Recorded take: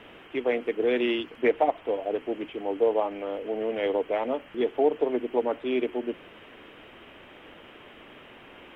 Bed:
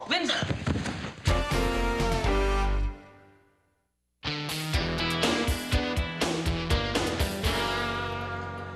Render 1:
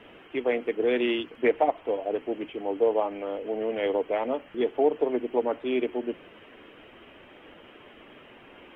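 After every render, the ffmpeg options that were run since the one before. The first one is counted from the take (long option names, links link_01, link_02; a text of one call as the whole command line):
ffmpeg -i in.wav -af "afftdn=noise_reduction=6:noise_floor=-50" out.wav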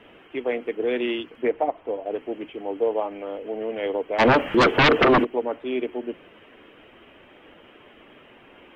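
ffmpeg -i in.wav -filter_complex "[0:a]asettb=1/sr,asplit=3[link_01][link_02][link_03];[link_01]atrim=end=1.434[link_04];[link_02]atrim=start=1.43:end=2.06,asetpts=PTS-STARTPTS,afade=type=in:duration=0.004:curve=qsin,afade=type=out:start_time=0.626:duration=0.004:curve=qsin,highshelf=frequency=2100:gain=-8.5[link_05];[link_03]atrim=start=2.056[link_06];[link_04][link_05]acrossfade=duration=0.004:curve1=hsin:curve2=qsin[link_07];[link_07][link_06]acrossfade=duration=0.004:curve1=qsin:curve2=hsin,asplit=3[link_08][link_09][link_10];[link_08]afade=type=out:start_time=4.18:duration=0.02[link_11];[link_09]aeval=exprs='0.251*sin(PI/2*5.62*val(0)/0.251)':channel_layout=same,afade=type=in:start_time=4.18:duration=0.02,afade=type=out:start_time=5.23:duration=0.02[link_12];[link_10]afade=type=in:start_time=5.23:duration=0.02[link_13];[link_11][link_12][link_13]amix=inputs=3:normalize=0" out.wav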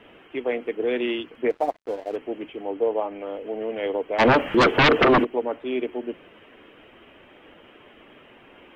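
ffmpeg -i in.wav -filter_complex "[0:a]asettb=1/sr,asplit=3[link_01][link_02][link_03];[link_01]atrim=end=1.504[link_04];[link_02]atrim=start=1.5:end=2.16,asetpts=PTS-STARTPTS,afade=type=in:duration=0.004:curve=qsin,afade=type=out:start_time=0.656:duration=0.004:curve=qsin,aeval=exprs='sgn(val(0))*max(abs(val(0))-0.00668,0)':channel_layout=same[link_05];[link_03]atrim=start=2.156[link_06];[link_04][link_05]acrossfade=duration=0.004:curve1=hsin:curve2=qsin[link_07];[link_07][link_06]acrossfade=duration=0.004:curve1=qsin:curve2=hsin,asettb=1/sr,asplit=3[link_08][link_09][link_10];[link_08]atrim=end=2.704[link_11];[link_09]atrim=start=2.7:end=3.21,asetpts=PTS-STARTPTS,afade=type=in:duration=0.004:curve=qsin,afade=type=out:start_time=0.506:duration=0.004:curve=qsin,highshelf=frequency=5500:gain=-8.5[link_12];[link_10]atrim=start=3.206[link_13];[link_11][link_12]acrossfade=duration=0.004:curve1=hsin:curve2=qsin[link_14];[link_14][link_13]acrossfade=duration=0.004:curve1=qsin:curve2=hsin" out.wav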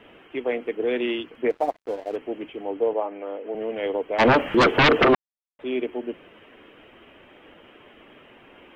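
ffmpeg -i in.wav -filter_complex "[0:a]asettb=1/sr,asplit=3[link_01][link_02][link_03];[link_01]atrim=end=2.934[link_04];[link_02]atrim=start=2.93:end=3.55,asetpts=PTS-STARTPTS,afade=type=in:duration=0.004:curve=qsin,afade=type=out:start_time=0.616:duration=0.004:curve=qsin,acrossover=split=200 2900:gain=0.0891 1 0.251[link_05][link_06][link_07];[link_05][link_06][link_07]amix=inputs=3:normalize=0[link_08];[link_03]atrim=start=3.546[link_09];[link_04][link_08]acrossfade=duration=0.004:curve1=hsin:curve2=qsin[link_10];[link_10][link_09]acrossfade=duration=0.004:curve1=qsin:curve2=hsin,asplit=3[link_11][link_12][link_13];[link_11]atrim=end=5.15,asetpts=PTS-STARTPTS,afade=type=out:start_time=5.146:duration=0.004:curve=hsin[link_14];[link_12]atrim=start=5.15:end=5.59,asetpts=PTS-STARTPTS,volume=0[link_15];[link_13]atrim=start=5.59,asetpts=PTS-STARTPTS,afade=type=in:duration=0.004:curve=hsin[link_16];[link_14][link_15][link_16]concat=n=3:v=0:a=1" out.wav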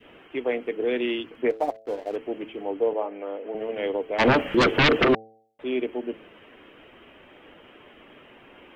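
ffmpeg -i in.wav -af "bandreject=frequency=110.8:width_type=h:width=4,bandreject=frequency=221.6:width_type=h:width=4,bandreject=frequency=332.4:width_type=h:width=4,bandreject=frequency=443.2:width_type=h:width=4,bandreject=frequency=554:width_type=h:width=4,bandreject=frequency=664.8:width_type=h:width=4,bandreject=frequency=775.6:width_type=h:width=4,adynamicequalizer=threshold=0.0224:dfrequency=910:dqfactor=0.81:tfrequency=910:tqfactor=0.81:attack=5:release=100:ratio=0.375:range=3:mode=cutabove:tftype=bell" out.wav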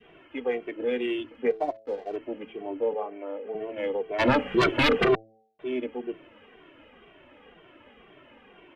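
ffmpeg -i in.wav -filter_complex "[0:a]adynamicsmooth=sensitivity=1:basefreq=6100,asplit=2[link_01][link_02];[link_02]adelay=2.1,afreqshift=-2[link_03];[link_01][link_03]amix=inputs=2:normalize=1" out.wav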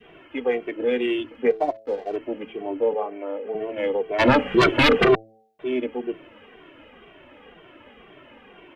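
ffmpeg -i in.wav -af "volume=5dB" out.wav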